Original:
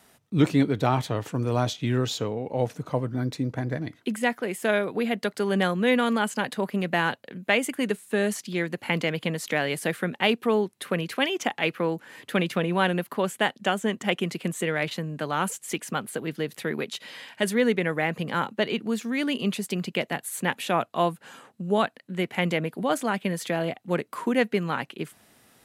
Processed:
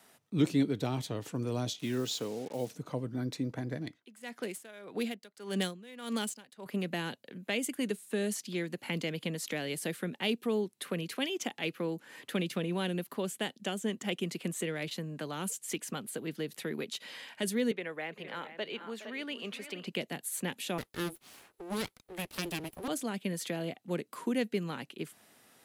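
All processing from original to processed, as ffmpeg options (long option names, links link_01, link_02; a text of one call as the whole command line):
ffmpeg -i in.wav -filter_complex "[0:a]asettb=1/sr,asplit=3[link_01][link_02][link_03];[link_01]atrim=end=1.794[link_04];[link_02]atrim=start=1.79:end=2.71,asetpts=PTS-STARTPTS,afade=type=in:duration=0.004:curve=qsin,afade=type=out:start_time=0.916:duration=0.004:curve=qsin,highpass=150,acrusher=bits=6:mix=0:aa=0.5[link_05];[link_03]atrim=start=2.706[link_06];[link_04][link_05]acrossfade=duration=0.004:curve1=hsin:curve2=qsin[link_07];[link_07][link_06]acrossfade=duration=0.004:curve1=qsin:curve2=hsin,asettb=1/sr,asplit=3[link_08][link_09][link_10];[link_08]atrim=end=3.844[link_11];[link_09]atrim=start=3.84:end=6.66,asetpts=PTS-STARTPTS,afade=type=in:duration=0.004:curve=qsin,afade=type=out:start_time=2.816:duration=0.004:curve=qsin,aemphasis=mode=production:type=75kf,adynamicsmooth=sensitivity=5.5:basefreq=4500,aeval=exprs='val(0)*pow(10,-24*(0.5-0.5*cos(2*PI*1.7*n/s))/20)':channel_layout=same[link_12];[link_10]atrim=start=6.656[link_13];[link_11][link_12]acrossfade=duration=0.004:curve1=hsin:curve2=qsin[link_14];[link_14][link_13]acrossfade=duration=0.004:curve1=qsin:curve2=hsin,asettb=1/sr,asplit=3[link_15][link_16][link_17];[link_15]atrim=end=17.714[link_18];[link_16]atrim=start=17.71:end=19.87,asetpts=PTS-STARTPTS,afade=type=in:duration=0.004:curve=qsin,afade=type=out:start_time=2.156:duration=0.004:curve=qsin,acrossover=split=420 3700:gain=0.2 1 0.251[link_19][link_20][link_21];[link_19][link_20][link_21]amix=inputs=3:normalize=0,aecho=1:1:414|464:0.112|0.224,atrim=end_sample=95256[link_22];[link_17]atrim=start=19.866[link_23];[link_18][link_22]acrossfade=duration=0.004:curve1=hsin:curve2=qsin[link_24];[link_24][link_23]acrossfade=duration=0.004:curve1=qsin:curve2=hsin,asettb=1/sr,asplit=3[link_25][link_26][link_27];[link_25]atrim=end=20.784[link_28];[link_26]atrim=start=20.78:end=22.88,asetpts=PTS-STARTPTS,afade=type=in:duration=0.004:curve=qsin,afade=type=out:start_time=2.096:duration=0.004:curve=qsin,equalizer=frequency=11000:width_type=o:width=0.3:gain=12.5,aeval=exprs='abs(val(0))':channel_layout=same[link_29];[link_27]atrim=start=22.876[link_30];[link_28][link_29]acrossfade=duration=0.004:curve1=hsin:curve2=qsin[link_31];[link_31][link_30]acrossfade=duration=0.004:curve1=qsin:curve2=hsin,acrossover=split=430|3000[link_32][link_33][link_34];[link_33]acompressor=threshold=-44dB:ratio=2.5[link_35];[link_32][link_35][link_34]amix=inputs=3:normalize=0,highpass=frequency=220:poles=1,volume=-3dB" out.wav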